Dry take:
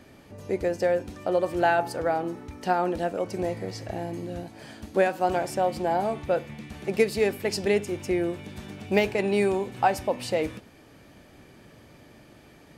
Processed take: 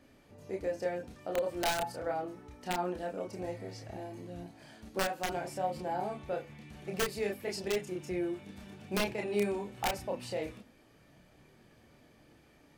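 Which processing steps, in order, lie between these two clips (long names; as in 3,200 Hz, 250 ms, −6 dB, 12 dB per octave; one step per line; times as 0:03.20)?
wrap-around overflow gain 12.5 dB
multi-voice chorus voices 6, 0.23 Hz, delay 30 ms, depth 4.2 ms
level −6.5 dB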